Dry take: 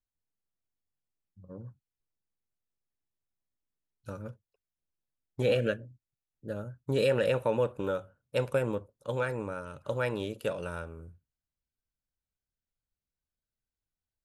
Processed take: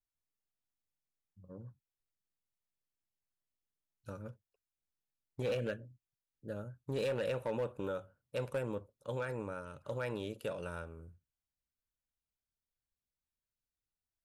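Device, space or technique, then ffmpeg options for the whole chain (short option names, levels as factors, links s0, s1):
clipper into limiter: -af "asoftclip=type=hard:threshold=0.0841,alimiter=level_in=1.06:limit=0.0631:level=0:latency=1:release=25,volume=0.944,volume=0.562"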